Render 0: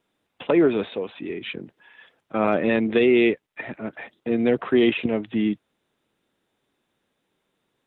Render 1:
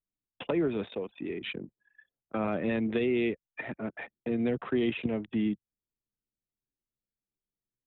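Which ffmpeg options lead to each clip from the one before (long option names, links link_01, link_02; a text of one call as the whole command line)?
ffmpeg -i in.wav -filter_complex "[0:a]anlmdn=0.631,acrossover=split=180[link_01][link_02];[link_02]acompressor=threshold=-33dB:ratio=2[link_03];[link_01][link_03]amix=inputs=2:normalize=0,volume=-2dB" out.wav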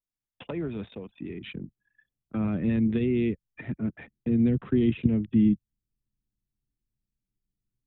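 ffmpeg -i in.wav -af "asubboost=boost=11.5:cutoff=210,volume=-4.5dB" out.wav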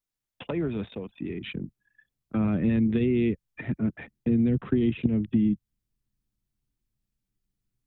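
ffmpeg -i in.wav -af "acompressor=threshold=-23dB:ratio=6,volume=3.5dB" out.wav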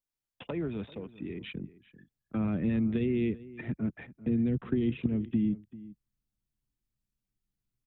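ffmpeg -i in.wav -filter_complex "[0:a]asplit=2[link_01][link_02];[link_02]adelay=390.7,volume=-18dB,highshelf=frequency=4000:gain=-8.79[link_03];[link_01][link_03]amix=inputs=2:normalize=0,volume=-5dB" out.wav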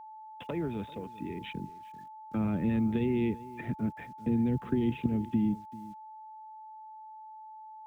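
ffmpeg -i in.wav -af "acrusher=bits=10:mix=0:aa=0.000001,aeval=exprs='val(0)+0.00562*sin(2*PI*870*n/s)':channel_layout=same" out.wav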